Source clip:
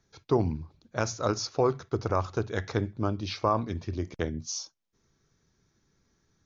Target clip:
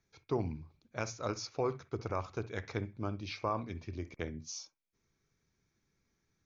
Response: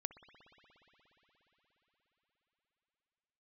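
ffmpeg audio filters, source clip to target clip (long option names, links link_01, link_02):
-filter_complex "[0:a]equalizer=frequency=2300:width_type=o:width=0.32:gain=9[link_01];[1:a]atrim=start_sample=2205,atrim=end_sample=3087[link_02];[link_01][link_02]afir=irnorm=-1:irlink=0,volume=-5.5dB"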